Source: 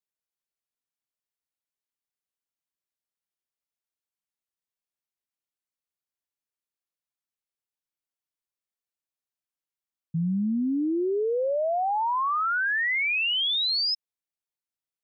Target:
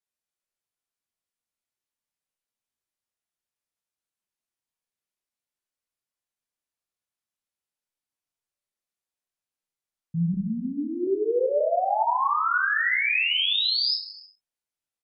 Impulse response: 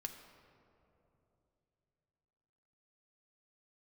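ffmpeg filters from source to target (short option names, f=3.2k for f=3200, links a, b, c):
-filter_complex "[0:a]asettb=1/sr,asplit=3[a][b][c];[a]atrim=end=10.344[d];[b]atrim=start=10.34:end=11.07,asetpts=PTS-STARTPTS,afade=t=in:d=0.004:c=qsin,afade=t=out:st=0.726:d=0.004:c=qsin,lowshelf=f=280:g=-11.5[e];[c]atrim=start=11.066[f];[d][e]acrossfade=d=0.004:c1=hsin:c2=qsin[g];[g][f]acrossfade=d=0.004:c1=qsin:c2=hsin,aecho=1:1:31|60:0.501|0.299[h];[1:a]atrim=start_sample=2205,afade=t=out:st=0.26:d=0.01,atrim=end_sample=11907,asetrate=23814,aresample=44100[i];[h][i]afir=irnorm=-1:irlink=0"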